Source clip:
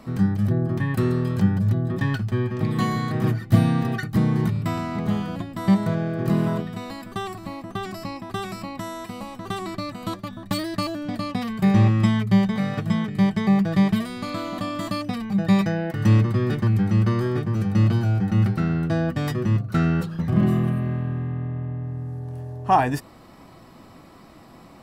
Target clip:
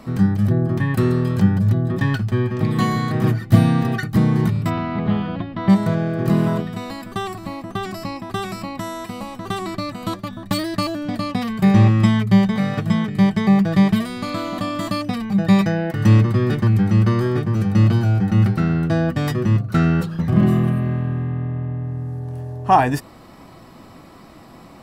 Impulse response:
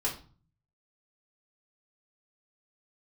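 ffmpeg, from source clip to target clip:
-filter_complex "[0:a]asplit=3[a][b][c];[a]afade=t=out:st=4.69:d=0.02[d];[b]lowpass=f=3.8k:w=0.5412,lowpass=f=3.8k:w=1.3066,afade=t=in:st=4.69:d=0.02,afade=t=out:st=5.68:d=0.02[e];[c]afade=t=in:st=5.68:d=0.02[f];[d][e][f]amix=inputs=3:normalize=0,volume=4dB"

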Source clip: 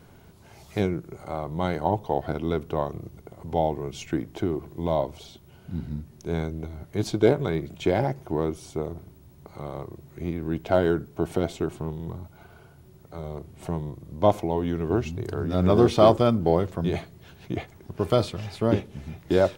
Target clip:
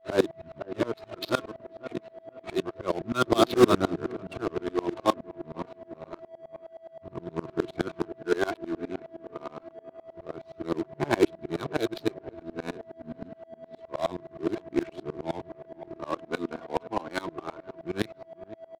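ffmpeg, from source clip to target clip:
-filter_complex "[0:a]areverse,agate=range=-17dB:threshold=-44dB:ratio=16:detection=peak,lowshelf=f=710:t=q:w=1.5:g=-7,aphaser=in_gain=1:out_gain=1:delay=4.4:decay=0.44:speed=0.26:type=sinusoidal,highpass=160,equalizer=f=180:t=q:w=4:g=-4,equalizer=f=330:t=q:w=4:g=9,equalizer=f=800:t=q:w=4:g=-10,equalizer=f=1.8k:t=q:w=4:g=-3,equalizer=f=3.9k:t=q:w=4:g=9,lowpass=f=5.1k:w=0.5412,lowpass=f=5.1k:w=1.3066,aeval=exprs='val(0)+0.00891*sin(2*PI*630*n/s)':c=same,acrusher=bits=3:mode=log:mix=0:aa=0.000001,asplit=2[a][b];[b]adelay=510,lowpass=f=1.8k:p=1,volume=-16dB,asplit=2[c][d];[d]adelay=510,lowpass=f=1.8k:p=1,volume=0.49,asplit=2[e][f];[f]adelay=510,lowpass=f=1.8k:p=1,volume=0.49,asplit=2[g][h];[h]adelay=510,lowpass=f=1.8k:p=1,volume=0.49[i];[c][e][g][i]amix=inputs=4:normalize=0[j];[a][j]amix=inputs=2:normalize=0,asetrate=45938,aresample=44100,adynamicsmooth=sensitivity=5:basefreq=610,aeval=exprs='val(0)*pow(10,-26*if(lt(mod(-9.6*n/s,1),2*abs(-9.6)/1000),1-mod(-9.6*n/s,1)/(2*abs(-9.6)/1000),(mod(-9.6*n/s,1)-2*abs(-9.6)/1000)/(1-2*abs(-9.6)/1000))/20)':c=same,volume=7dB"

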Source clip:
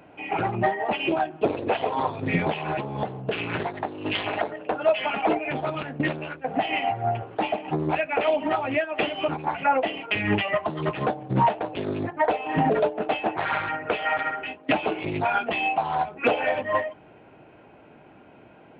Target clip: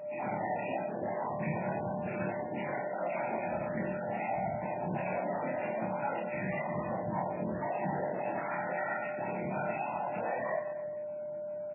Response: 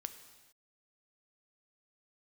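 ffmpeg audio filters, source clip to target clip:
-filter_complex "[0:a]aemphasis=mode=reproduction:type=50kf,bandreject=f=1.6k:w=22,alimiter=limit=-20.5dB:level=0:latency=1:release=11,afftfilt=real='hypot(re,im)*cos(2*PI*random(0))':imag='hypot(re,im)*sin(2*PI*random(1))':win_size=512:overlap=0.75,aeval=exprs='val(0)+0.00794*sin(2*PI*600*n/s)':c=same,aresample=8000,asoftclip=type=tanh:threshold=-32dB,aresample=44100,highpass=f=120:w=0.5412,highpass=f=120:w=1.3066,equalizer=f=190:t=q:w=4:g=4,equalizer=f=280:t=q:w=4:g=-7,equalizer=f=430:t=q:w=4:g=-10,equalizer=f=1.2k:t=q:w=4:g=-9,lowpass=f=2.1k:w=0.5412,lowpass=f=2.1k:w=1.3066,aecho=1:1:90|202.5|343.1|518.9|738.6:0.631|0.398|0.251|0.158|0.1,atempo=1.6,asplit=2[a][b];[b]adelay=27,volume=-4.5dB[c];[a][c]amix=inputs=2:normalize=0,volume=3dB" -ar 11025 -c:a libmp3lame -b:a 8k

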